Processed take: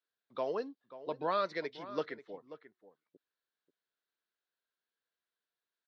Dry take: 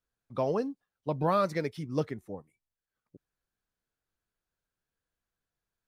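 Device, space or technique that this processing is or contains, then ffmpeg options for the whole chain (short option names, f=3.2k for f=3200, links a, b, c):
phone earpiece: -filter_complex "[0:a]highpass=490,equalizer=f=560:t=q:w=4:g=-4,equalizer=f=810:t=q:w=4:g=-7,equalizer=f=1.2k:t=q:w=4:g=-4,equalizer=f=2.4k:t=q:w=4:g=-4,equalizer=f=3.9k:t=q:w=4:g=4,lowpass=f=4.4k:w=0.5412,lowpass=f=4.4k:w=1.3066,asettb=1/sr,asplit=3[a][b][c];[a]atrim=end=1.964[d];[b]atrim=start=1.96:end=2.36,asetpts=PTS-STARTPTS,afade=t=in:d=0.004:c=qsin,afade=t=out:st=0.396:d=0.004:c=qsin,equalizer=f=1.4k:w=0.88:g=5.5[e];[c]atrim=start=2.356[f];[d][e]acrossfade=d=0.004:c1=hsin:c2=qsin[g];[g][f]acrossfade=d=0.004:c1=qsin:c2=hsin,asplit=2[h][i];[i]adelay=536.4,volume=-14dB,highshelf=f=4k:g=-12.1[j];[h][j]amix=inputs=2:normalize=0"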